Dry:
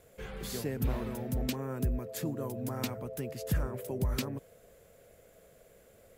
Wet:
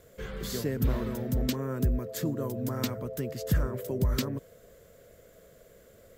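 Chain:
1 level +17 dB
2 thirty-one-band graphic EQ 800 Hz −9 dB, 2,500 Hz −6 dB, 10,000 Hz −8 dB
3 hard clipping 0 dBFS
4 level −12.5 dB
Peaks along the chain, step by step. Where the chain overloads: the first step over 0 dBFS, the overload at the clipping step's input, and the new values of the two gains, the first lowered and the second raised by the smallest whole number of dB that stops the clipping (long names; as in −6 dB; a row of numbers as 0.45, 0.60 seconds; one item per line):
−2.5, −3.0, −3.0, −15.5 dBFS
no step passes full scale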